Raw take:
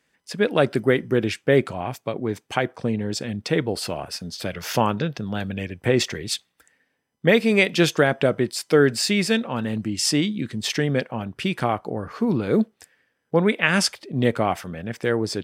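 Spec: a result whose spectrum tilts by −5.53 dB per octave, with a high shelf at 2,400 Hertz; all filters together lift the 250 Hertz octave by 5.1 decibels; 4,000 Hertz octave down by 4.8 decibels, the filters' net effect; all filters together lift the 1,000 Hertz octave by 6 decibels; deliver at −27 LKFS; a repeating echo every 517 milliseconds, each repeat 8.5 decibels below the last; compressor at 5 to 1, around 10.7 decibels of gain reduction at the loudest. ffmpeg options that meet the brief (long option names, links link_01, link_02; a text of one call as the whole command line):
ffmpeg -i in.wav -af "equalizer=frequency=250:width_type=o:gain=6,equalizer=frequency=1000:width_type=o:gain=8.5,highshelf=frequency=2400:gain=-3.5,equalizer=frequency=4000:width_type=o:gain=-3.5,acompressor=threshold=-21dB:ratio=5,aecho=1:1:517|1034|1551|2068:0.376|0.143|0.0543|0.0206,volume=-0.5dB" out.wav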